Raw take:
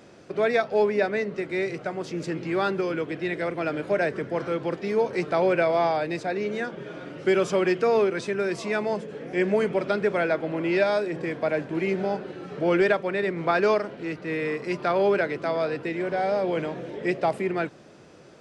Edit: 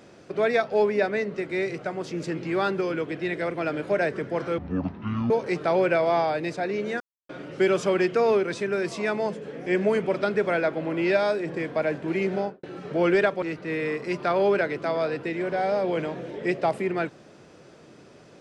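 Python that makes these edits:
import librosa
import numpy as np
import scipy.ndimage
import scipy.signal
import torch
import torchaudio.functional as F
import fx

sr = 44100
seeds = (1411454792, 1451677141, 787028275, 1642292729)

y = fx.studio_fade_out(x, sr, start_s=12.05, length_s=0.25)
y = fx.edit(y, sr, fx.speed_span(start_s=4.58, length_s=0.39, speed=0.54),
    fx.silence(start_s=6.67, length_s=0.29),
    fx.cut(start_s=13.09, length_s=0.93), tone=tone)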